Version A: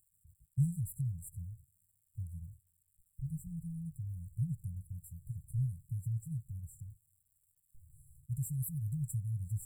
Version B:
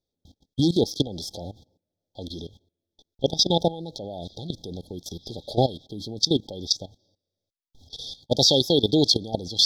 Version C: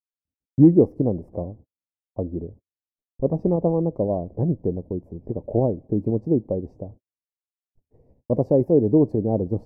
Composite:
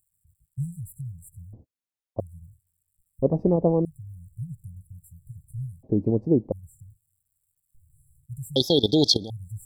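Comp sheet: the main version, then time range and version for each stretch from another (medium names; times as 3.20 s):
A
1.53–2.20 s: from C
3.22–3.85 s: from C
5.83–6.52 s: from C
8.56–9.30 s: from B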